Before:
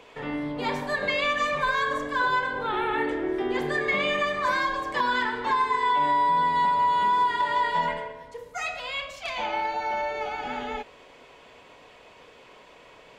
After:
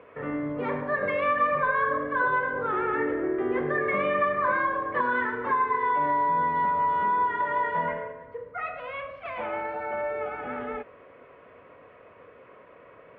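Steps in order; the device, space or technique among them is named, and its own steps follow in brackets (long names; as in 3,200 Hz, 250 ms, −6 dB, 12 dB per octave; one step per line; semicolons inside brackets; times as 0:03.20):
bass cabinet (loudspeaker in its box 66–2,000 Hz, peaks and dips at 98 Hz +6 dB, 530 Hz +5 dB, 850 Hz −9 dB, 1,200 Hz +5 dB)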